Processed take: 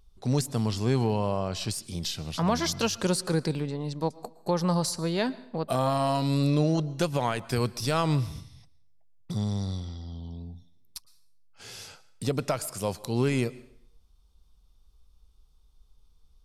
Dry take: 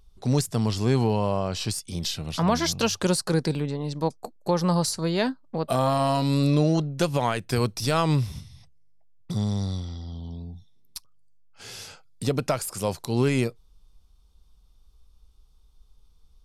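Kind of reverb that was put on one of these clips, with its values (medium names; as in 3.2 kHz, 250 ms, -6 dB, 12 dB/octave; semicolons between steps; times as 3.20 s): plate-style reverb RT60 0.68 s, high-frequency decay 0.9×, pre-delay 100 ms, DRR 19.5 dB; trim -3 dB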